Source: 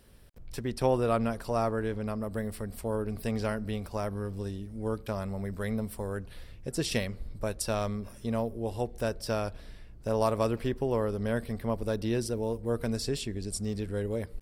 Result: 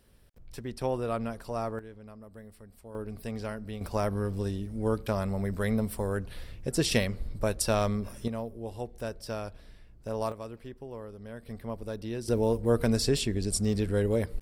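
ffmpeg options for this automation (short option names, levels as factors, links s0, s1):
-af "asetnsamples=n=441:p=0,asendcmd='1.79 volume volume -14.5dB;2.95 volume volume -5dB;3.81 volume volume 4dB;8.28 volume volume -5dB;10.32 volume volume -13dB;11.46 volume volume -6dB;12.28 volume volume 5.5dB',volume=0.596"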